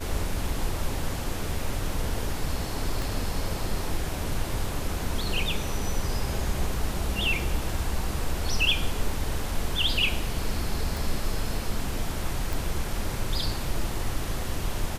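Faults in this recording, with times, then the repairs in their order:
3.02 s: pop
10.97 s: pop
12.53 s: pop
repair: de-click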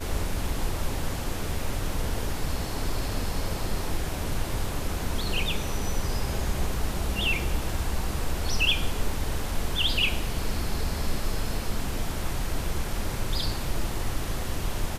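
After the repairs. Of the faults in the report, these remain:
3.02 s: pop
10.97 s: pop

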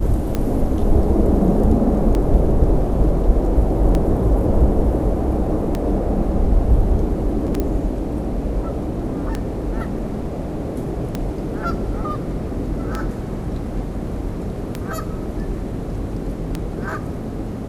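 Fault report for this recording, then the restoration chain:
tick 33 1/3 rpm -9 dBFS
7.60 s: pop -9 dBFS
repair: de-click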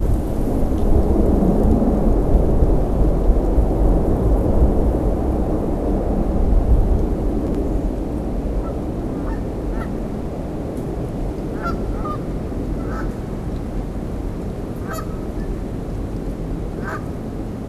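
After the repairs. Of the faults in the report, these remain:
7.60 s: pop

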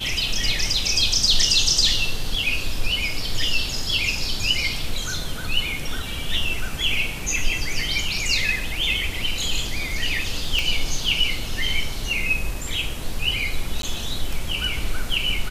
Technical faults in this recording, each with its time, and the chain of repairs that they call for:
10.59 s: pop
13.82–13.83 s: dropout 12 ms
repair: de-click; interpolate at 13.82 s, 12 ms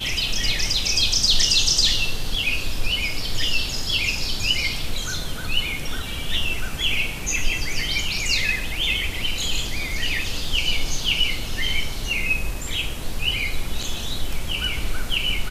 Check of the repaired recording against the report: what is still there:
nothing left

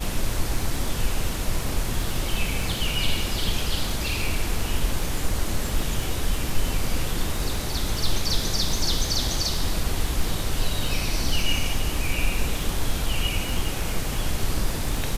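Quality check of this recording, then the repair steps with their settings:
crackle 35 per s -27 dBFS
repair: de-click

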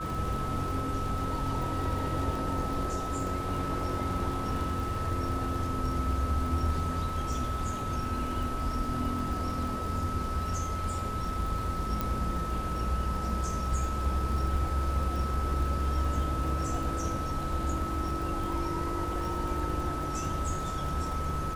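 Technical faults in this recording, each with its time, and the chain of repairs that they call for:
crackle 55 per s -36 dBFS
whine 1.3 kHz -35 dBFS
12.01 s: pop -16 dBFS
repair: de-click; band-stop 1.3 kHz, Q 30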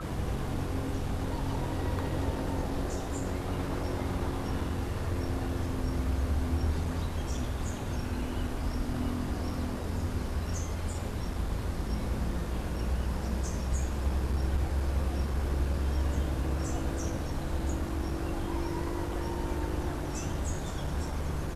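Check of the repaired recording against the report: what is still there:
nothing left

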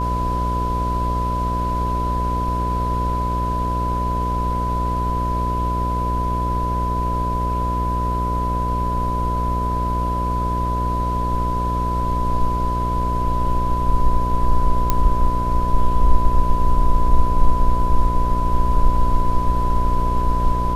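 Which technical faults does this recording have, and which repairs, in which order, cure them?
buzz 60 Hz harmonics 11 -23 dBFS
whine 1 kHz -22 dBFS
14.90 s: pop -4 dBFS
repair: de-click; de-hum 60 Hz, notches 11; band-stop 1 kHz, Q 30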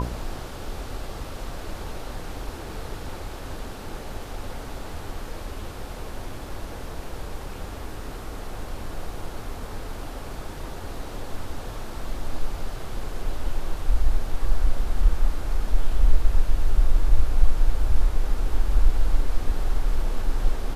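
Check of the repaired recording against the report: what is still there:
nothing left

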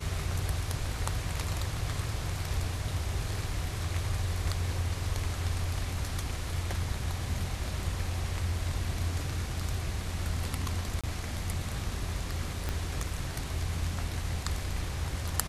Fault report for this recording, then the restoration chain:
11.01–11.04 s: dropout 26 ms
12.69 s: pop -18 dBFS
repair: de-click; interpolate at 11.01 s, 26 ms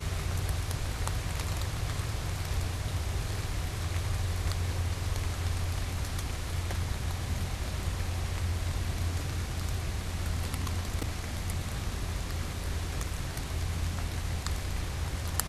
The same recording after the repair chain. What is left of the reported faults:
12.69 s: pop

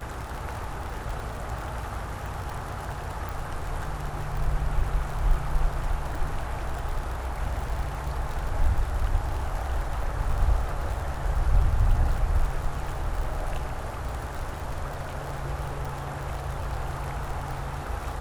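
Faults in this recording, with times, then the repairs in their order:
crackle 45 per s -31 dBFS
3.29 s: pop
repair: de-click

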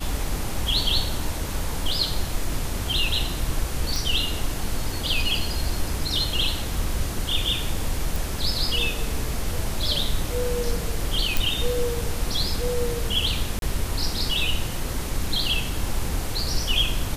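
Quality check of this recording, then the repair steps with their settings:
3.96 s: pop
8.16 s: pop
11.37 s: pop
13.59–13.62 s: dropout 32 ms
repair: de-click; interpolate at 13.59 s, 32 ms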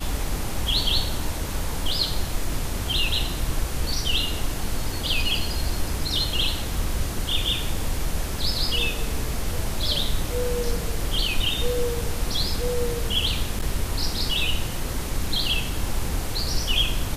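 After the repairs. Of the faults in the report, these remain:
nothing left

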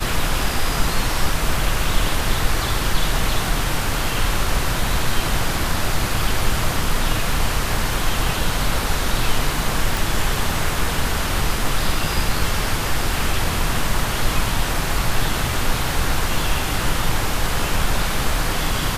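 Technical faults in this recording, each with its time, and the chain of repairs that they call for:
9.97 s: pop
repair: de-click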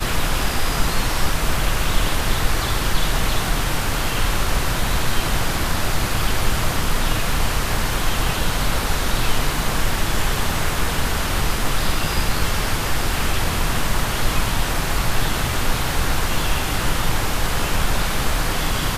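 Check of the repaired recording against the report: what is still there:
nothing left

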